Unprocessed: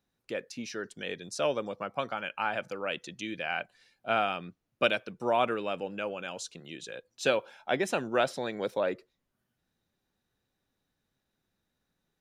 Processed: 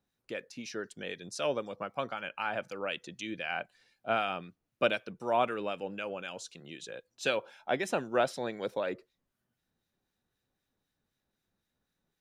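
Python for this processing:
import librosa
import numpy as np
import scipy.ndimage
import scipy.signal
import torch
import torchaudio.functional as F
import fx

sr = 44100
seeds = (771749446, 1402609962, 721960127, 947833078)

y = fx.harmonic_tremolo(x, sr, hz=3.9, depth_pct=50, crossover_hz=1500.0)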